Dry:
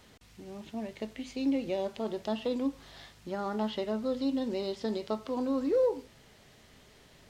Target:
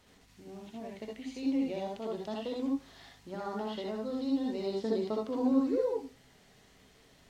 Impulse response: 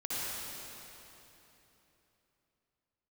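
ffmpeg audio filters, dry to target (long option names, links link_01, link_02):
-filter_complex "[0:a]asettb=1/sr,asplit=3[link_01][link_02][link_03];[link_01]atrim=end=4.664[link_04];[link_02]atrim=start=4.66:end=5.52,asetpts=PTS-STARTPTS,afade=type=in:duration=0.004:curve=qsin,afade=type=out:start_time=0.856:duration=0.004:curve=qsin,equalizer=frequency=300:width=0.73:gain=6.5[link_05];[link_03]atrim=start=5.516[link_06];[link_04][link_05]acrossfade=duration=0.004:curve1=hsin:curve2=qsin[link_07];[link_07][link_06]acrossfade=duration=0.004:curve1=qsin:curve2=hsin[link_08];[1:a]atrim=start_sample=2205,atrim=end_sample=3528,asetrate=41013,aresample=44100[link_09];[link_08][link_09]afir=irnorm=-1:irlink=0,volume=-2dB"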